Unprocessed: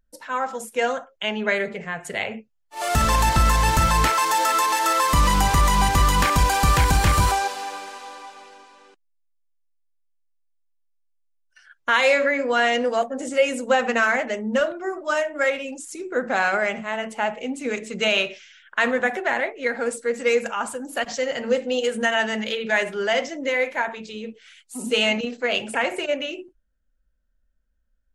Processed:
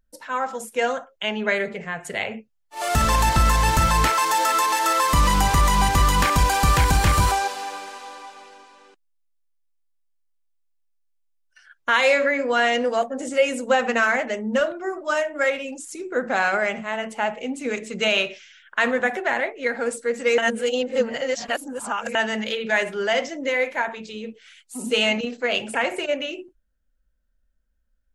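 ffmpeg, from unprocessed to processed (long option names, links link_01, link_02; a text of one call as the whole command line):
ffmpeg -i in.wav -filter_complex "[0:a]asplit=3[link_01][link_02][link_03];[link_01]atrim=end=20.382[link_04];[link_02]atrim=start=20.378:end=22.152,asetpts=PTS-STARTPTS,areverse[link_05];[link_03]atrim=start=22.148[link_06];[link_04][link_05]acrossfade=duration=0.004:curve1=hsin:curve2=hsin[link_07];[link_07][link_06]acrossfade=duration=0.004:curve1=hsin:curve2=hsin" out.wav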